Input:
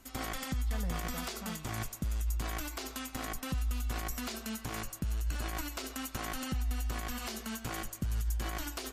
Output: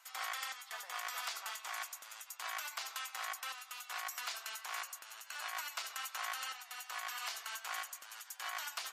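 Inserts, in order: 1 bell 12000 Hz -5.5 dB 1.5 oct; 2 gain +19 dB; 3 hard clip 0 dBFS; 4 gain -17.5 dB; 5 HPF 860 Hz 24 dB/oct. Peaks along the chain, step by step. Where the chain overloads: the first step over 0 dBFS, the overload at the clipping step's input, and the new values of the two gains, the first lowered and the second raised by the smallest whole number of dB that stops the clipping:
-24.0, -5.0, -5.0, -22.5, -25.5 dBFS; no overload

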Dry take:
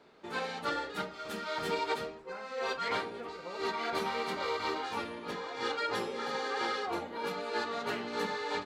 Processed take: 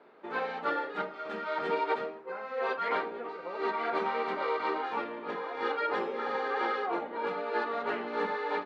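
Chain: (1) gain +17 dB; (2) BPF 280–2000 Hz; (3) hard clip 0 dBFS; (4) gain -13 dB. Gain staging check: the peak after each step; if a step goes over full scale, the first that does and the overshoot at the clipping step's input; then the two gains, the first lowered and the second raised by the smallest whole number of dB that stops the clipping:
-3.0, -3.0, -3.0, -16.0 dBFS; no overload

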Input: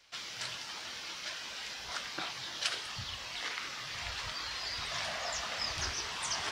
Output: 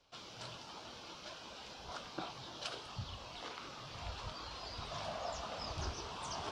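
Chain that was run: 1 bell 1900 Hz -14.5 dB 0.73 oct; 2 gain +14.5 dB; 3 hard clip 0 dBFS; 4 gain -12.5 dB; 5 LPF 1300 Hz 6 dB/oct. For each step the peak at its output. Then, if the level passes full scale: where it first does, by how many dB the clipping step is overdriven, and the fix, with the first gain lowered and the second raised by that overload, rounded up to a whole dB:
-19.0, -4.5, -4.5, -17.0, -27.0 dBFS; no overload

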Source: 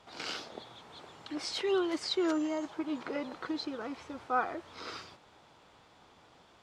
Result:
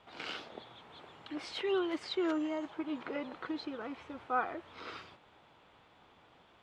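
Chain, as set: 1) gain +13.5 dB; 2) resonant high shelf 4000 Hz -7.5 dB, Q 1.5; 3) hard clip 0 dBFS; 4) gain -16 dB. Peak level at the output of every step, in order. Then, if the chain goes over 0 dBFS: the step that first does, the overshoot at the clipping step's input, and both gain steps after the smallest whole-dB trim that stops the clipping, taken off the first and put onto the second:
-6.5, -6.0, -6.0, -22.0 dBFS; no overload

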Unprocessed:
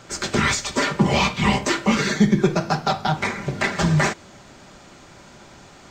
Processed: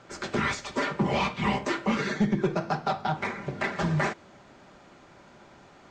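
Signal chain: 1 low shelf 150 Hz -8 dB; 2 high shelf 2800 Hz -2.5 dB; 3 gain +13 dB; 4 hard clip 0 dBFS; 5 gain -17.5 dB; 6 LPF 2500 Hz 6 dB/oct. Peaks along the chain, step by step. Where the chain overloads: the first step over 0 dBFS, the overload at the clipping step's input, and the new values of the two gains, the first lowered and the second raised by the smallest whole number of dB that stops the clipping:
-6.5, -6.5, +6.5, 0.0, -17.5, -17.5 dBFS; step 3, 6.5 dB; step 3 +6 dB, step 5 -10.5 dB

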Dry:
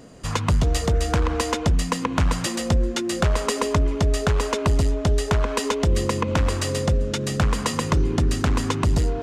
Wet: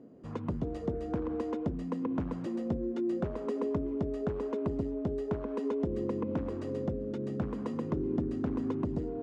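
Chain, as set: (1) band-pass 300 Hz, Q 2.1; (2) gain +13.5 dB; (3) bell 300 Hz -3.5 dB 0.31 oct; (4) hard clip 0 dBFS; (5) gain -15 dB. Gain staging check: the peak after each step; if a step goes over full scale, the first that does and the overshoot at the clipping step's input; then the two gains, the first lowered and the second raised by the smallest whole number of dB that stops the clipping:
-15.0, -1.5, -2.5, -2.5, -17.5 dBFS; no overload

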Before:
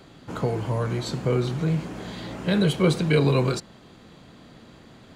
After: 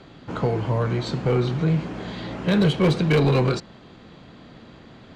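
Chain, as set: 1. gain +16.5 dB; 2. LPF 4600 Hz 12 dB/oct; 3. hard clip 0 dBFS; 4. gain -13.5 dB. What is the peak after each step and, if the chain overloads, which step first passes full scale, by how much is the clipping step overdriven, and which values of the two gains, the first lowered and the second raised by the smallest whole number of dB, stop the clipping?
+8.5, +8.5, 0.0, -13.5 dBFS; step 1, 8.5 dB; step 1 +7.5 dB, step 4 -4.5 dB

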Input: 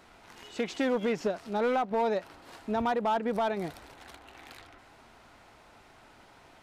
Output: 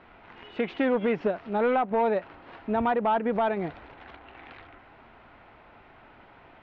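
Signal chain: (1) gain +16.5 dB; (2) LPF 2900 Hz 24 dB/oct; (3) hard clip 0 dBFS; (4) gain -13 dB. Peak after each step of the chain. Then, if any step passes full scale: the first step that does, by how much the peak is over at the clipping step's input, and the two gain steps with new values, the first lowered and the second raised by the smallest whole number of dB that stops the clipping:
-5.5, -4.0, -4.0, -17.0 dBFS; no overload

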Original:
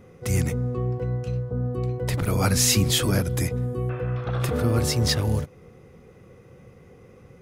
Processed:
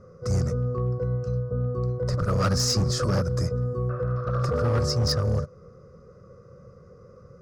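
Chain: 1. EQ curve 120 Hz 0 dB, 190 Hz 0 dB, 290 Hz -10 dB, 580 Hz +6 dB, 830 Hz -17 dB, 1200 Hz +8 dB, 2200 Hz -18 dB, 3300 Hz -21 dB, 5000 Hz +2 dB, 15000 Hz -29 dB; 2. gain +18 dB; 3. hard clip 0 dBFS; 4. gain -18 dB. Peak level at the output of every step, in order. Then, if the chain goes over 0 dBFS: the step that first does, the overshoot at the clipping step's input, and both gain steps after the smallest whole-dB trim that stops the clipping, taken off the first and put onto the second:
-10.0, +8.0, 0.0, -18.0 dBFS; step 2, 8.0 dB; step 2 +10 dB, step 4 -10 dB

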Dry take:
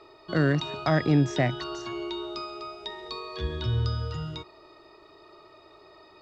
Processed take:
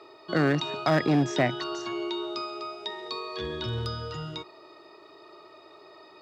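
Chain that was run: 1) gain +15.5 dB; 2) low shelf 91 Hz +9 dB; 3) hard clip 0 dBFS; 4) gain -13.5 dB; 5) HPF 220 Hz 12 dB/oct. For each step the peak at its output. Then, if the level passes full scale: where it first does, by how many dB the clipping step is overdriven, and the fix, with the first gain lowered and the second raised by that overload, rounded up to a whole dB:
+3.5, +5.0, 0.0, -13.5, -11.5 dBFS; step 1, 5.0 dB; step 1 +10.5 dB, step 4 -8.5 dB

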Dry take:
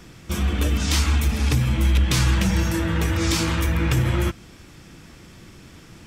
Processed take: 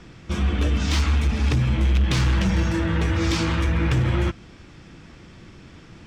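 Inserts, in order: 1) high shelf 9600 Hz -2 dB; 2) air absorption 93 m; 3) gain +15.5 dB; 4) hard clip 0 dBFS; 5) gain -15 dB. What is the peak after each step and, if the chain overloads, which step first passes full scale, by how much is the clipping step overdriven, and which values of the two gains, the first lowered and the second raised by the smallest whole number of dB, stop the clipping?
-8.5, -9.0, +6.5, 0.0, -15.0 dBFS; step 3, 6.5 dB; step 3 +8.5 dB, step 5 -8 dB

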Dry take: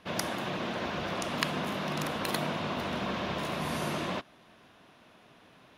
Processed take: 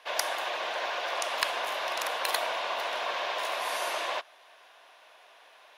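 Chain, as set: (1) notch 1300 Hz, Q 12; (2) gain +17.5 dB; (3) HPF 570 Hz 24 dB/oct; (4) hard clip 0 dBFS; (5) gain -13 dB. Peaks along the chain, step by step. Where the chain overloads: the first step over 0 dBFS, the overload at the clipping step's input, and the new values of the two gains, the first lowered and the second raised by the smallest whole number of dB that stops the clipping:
-8.0, +9.5, +8.0, 0.0, -13.0 dBFS; step 2, 8.0 dB; step 2 +9.5 dB, step 5 -5 dB

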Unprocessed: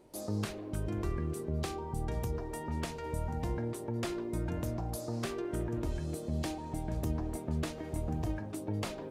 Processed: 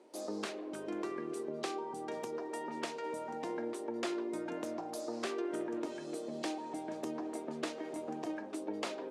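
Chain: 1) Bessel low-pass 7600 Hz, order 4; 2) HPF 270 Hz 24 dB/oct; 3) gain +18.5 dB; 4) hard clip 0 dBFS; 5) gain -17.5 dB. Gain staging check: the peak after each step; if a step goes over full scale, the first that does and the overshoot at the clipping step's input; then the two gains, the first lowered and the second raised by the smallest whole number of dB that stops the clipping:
-22.5, -23.0, -4.5, -4.5, -22.0 dBFS; no overload

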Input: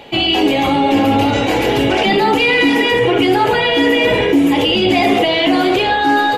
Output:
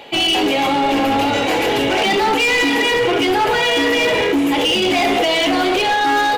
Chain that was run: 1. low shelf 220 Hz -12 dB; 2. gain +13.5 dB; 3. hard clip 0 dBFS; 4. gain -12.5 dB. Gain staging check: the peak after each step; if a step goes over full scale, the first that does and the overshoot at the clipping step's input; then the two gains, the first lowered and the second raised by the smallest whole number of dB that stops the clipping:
-4.0, +9.5, 0.0, -12.5 dBFS; step 2, 9.5 dB; step 2 +3.5 dB, step 4 -2.5 dB

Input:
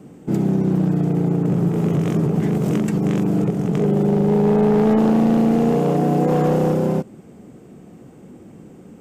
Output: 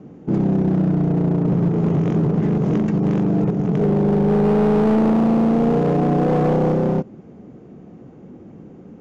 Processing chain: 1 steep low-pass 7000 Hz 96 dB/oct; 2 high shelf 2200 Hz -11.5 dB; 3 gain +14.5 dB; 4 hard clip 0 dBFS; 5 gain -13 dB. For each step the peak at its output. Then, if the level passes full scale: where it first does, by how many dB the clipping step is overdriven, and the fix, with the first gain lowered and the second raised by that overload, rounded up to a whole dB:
-10.5, -10.5, +4.0, 0.0, -13.0 dBFS; step 3, 4.0 dB; step 3 +10.5 dB, step 5 -9 dB

